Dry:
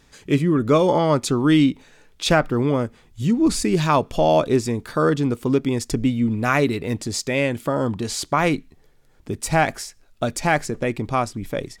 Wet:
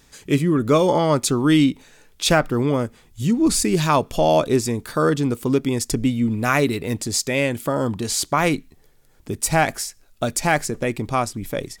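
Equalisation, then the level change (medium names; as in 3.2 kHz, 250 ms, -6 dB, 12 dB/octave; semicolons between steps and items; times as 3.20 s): treble shelf 7.2 kHz +11 dB; 0.0 dB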